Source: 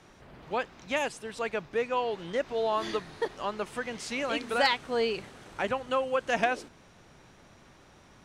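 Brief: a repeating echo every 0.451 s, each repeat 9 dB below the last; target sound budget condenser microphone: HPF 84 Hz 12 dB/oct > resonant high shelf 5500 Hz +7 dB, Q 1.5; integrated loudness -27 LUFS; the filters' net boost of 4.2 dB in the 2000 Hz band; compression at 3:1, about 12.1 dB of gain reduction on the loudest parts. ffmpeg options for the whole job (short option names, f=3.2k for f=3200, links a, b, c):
-af "equalizer=f=2k:t=o:g=6,acompressor=threshold=-35dB:ratio=3,highpass=84,highshelf=f=5.5k:t=q:w=1.5:g=7,aecho=1:1:451|902|1353|1804:0.355|0.124|0.0435|0.0152,volume=10dB"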